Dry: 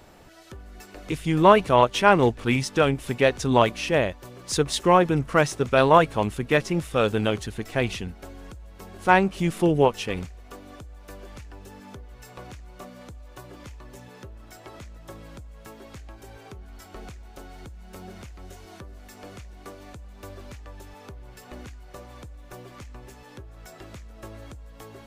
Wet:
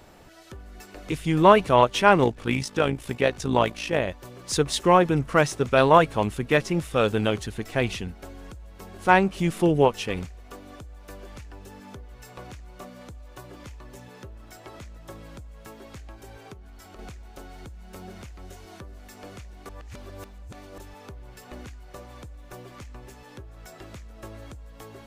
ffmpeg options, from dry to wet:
ffmpeg -i in.wav -filter_complex "[0:a]asettb=1/sr,asplit=3[link_01][link_02][link_03];[link_01]atrim=end=2.244[link_04];[link_02]atrim=start=2.24:end=4.08,asetpts=PTS-STARTPTS,afade=type=in:duration=0.004:curve=qsin,afade=type=out:start_time=1.836:duration=0.004:curve=qsin,tremolo=f=55:d=0.621[link_05];[link_03]atrim=start=4.076[link_06];[link_04][link_05]acrossfade=duration=0.004:curve1=hsin:curve2=qsin[link_07];[link_07][link_06]acrossfade=duration=0.004:curve1=qsin:curve2=hsin,asettb=1/sr,asplit=3[link_08][link_09][link_10];[link_08]atrim=end=16.534[link_11];[link_09]atrim=start=16.53:end=16.99,asetpts=PTS-STARTPTS,afade=type=in:duration=0.004:curve=qsin,afade=type=out:start_time=0.456:duration=0.004:curve=qsin,acompressor=threshold=-42dB:ratio=6:attack=3.2:release=140:knee=1:detection=peak[link_12];[link_10]atrim=start=16.986[link_13];[link_11][link_12]acrossfade=duration=0.004:curve1=hsin:curve2=qsin[link_14];[link_14][link_13]acrossfade=duration=0.004:curve1=qsin:curve2=hsin,asplit=3[link_15][link_16][link_17];[link_15]atrim=end=19.692[link_18];[link_16]atrim=start=19.688:end=20.782,asetpts=PTS-STARTPTS,areverse[link_19];[link_17]atrim=start=20.778[link_20];[link_18][link_19]acrossfade=duration=0.004:curve1=hsin:curve2=hsin[link_21];[link_21][link_20]acrossfade=duration=0.004:curve1=hsin:curve2=hsin" out.wav

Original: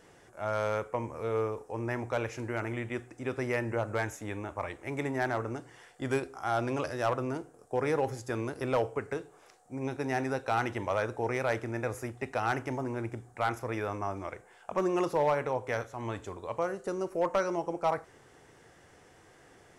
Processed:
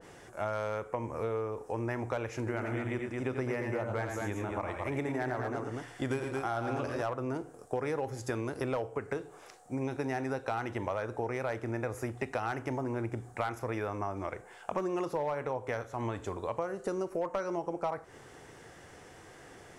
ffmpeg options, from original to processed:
ffmpeg -i in.wav -filter_complex "[0:a]asettb=1/sr,asplit=3[link_01][link_02][link_03];[link_01]atrim=end=2.384[link_04];[link_02]atrim=start=2.38:end=7.02,asetpts=PTS-STARTPTS,afade=type=in:duration=0.004:curve=qsin,afade=type=out:start_time=4.636:duration=0.004:curve=qsin,aecho=1:1:87|111|222:0.447|0.316|0.473,atrim=end_sample=204624[link_05];[link_03]atrim=start=7.016[link_06];[link_04][link_05]acrossfade=duration=0.004:curve1=hsin:curve2=qsin[link_07];[link_07][link_06]acrossfade=duration=0.004:curve1=qsin:curve2=hsin,acompressor=threshold=-36dB:ratio=6,adynamicequalizer=threshold=0.00251:dfrequency=1800:dqfactor=0.7:tfrequency=1800:tqfactor=0.7:attack=5:release=100:ratio=0.375:range=2:mode=cutabove:tftype=highshelf,volume=5.5dB" out.wav

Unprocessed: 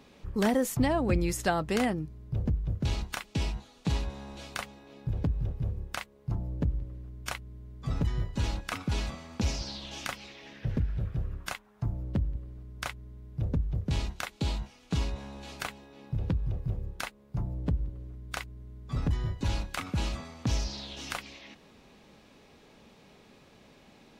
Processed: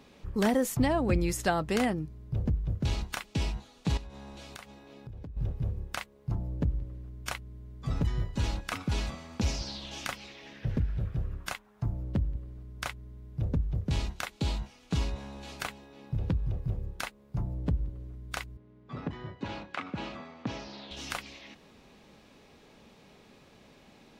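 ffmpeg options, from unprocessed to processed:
ffmpeg -i in.wav -filter_complex "[0:a]asettb=1/sr,asplit=3[link_01][link_02][link_03];[link_01]atrim=end=3.974[link_04];[link_02]atrim=start=3.97:end=5.37,asetpts=PTS-STARTPTS,afade=type=in:duration=0.004:curve=qsin,afade=type=out:start_time=1.396:duration=0.004:curve=qsin,acompressor=threshold=-42dB:ratio=4:attack=3.2:release=140:knee=1:detection=peak[link_05];[link_03]atrim=start=5.366[link_06];[link_04][link_05]acrossfade=duration=0.004:curve1=hsin:curve2=qsin[link_07];[link_07][link_06]acrossfade=duration=0.004:curve1=qsin:curve2=hsin,asettb=1/sr,asplit=3[link_08][link_09][link_10];[link_08]atrim=end=18.574[link_11];[link_09]atrim=start=18.57:end=20.91,asetpts=PTS-STARTPTS,afade=type=in:duration=0.004:curve=qsin,afade=type=out:start_time=2.336:duration=0.004:curve=qsin,highpass=200,lowpass=2800[link_12];[link_10]atrim=start=20.906[link_13];[link_11][link_12]acrossfade=duration=0.004:curve1=hsin:curve2=qsin[link_14];[link_14][link_13]acrossfade=duration=0.004:curve1=qsin:curve2=hsin" out.wav

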